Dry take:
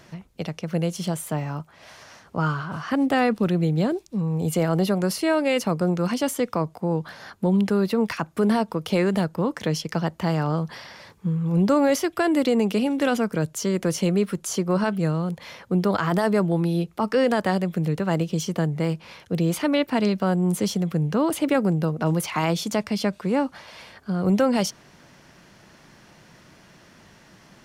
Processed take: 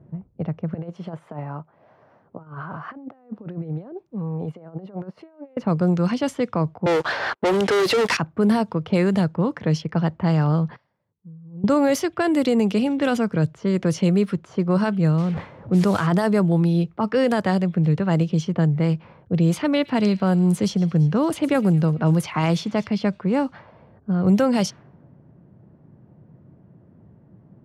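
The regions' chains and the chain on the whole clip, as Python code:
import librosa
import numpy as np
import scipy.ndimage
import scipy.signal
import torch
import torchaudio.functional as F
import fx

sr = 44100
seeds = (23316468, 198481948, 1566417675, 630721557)

y = fx.chain(x, sr, fx.highpass(hz=730.0, slope=6),
    fx.over_compress(threshold_db=-34.0, ratio=-0.5), at=(0.74, 5.57))
y = fx.chain(y, sr, fx.highpass(hz=350.0, slope=24),
    fx.leveller(passes=5), at=(6.86, 8.17))
y = fx.chain(y, sr, fx.pre_emphasis(coefficient=0.9),
    fx.upward_expand(threshold_db=-55.0, expansion=1.5), at=(10.76, 11.64))
y = fx.chain(y, sr, fx.delta_mod(bps=64000, step_db=-33.5),
    fx.sustainer(db_per_s=60.0), at=(15.18, 16.07))
y = fx.chain(y, sr, fx.high_shelf(hz=11000.0, db=3.0),
    fx.echo_wet_highpass(ms=112, feedback_pct=68, hz=2400.0, wet_db=-17), at=(19.69, 22.87))
y = scipy.signal.sosfilt(scipy.signal.butter(2, 52.0, 'highpass', fs=sr, output='sos'), y)
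y = fx.env_lowpass(y, sr, base_hz=440.0, full_db=-16.5)
y = fx.peak_eq(y, sr, hz=120.0, db=8.5, octaves=1.2)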